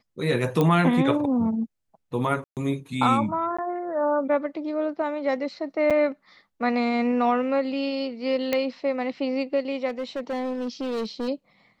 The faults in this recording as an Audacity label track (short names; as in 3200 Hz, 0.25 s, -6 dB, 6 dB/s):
0.610000	0.610000	pop -11 dBFS
2.440000	2.570000	gap 0.128 s
3.570000	3.580000	gap 15 ms
5.900000	5.910000	gap 6.6 ms
8.530000	8.530000	pop -10 dBFS
9.880000	11.290000	clipped -25 dBFS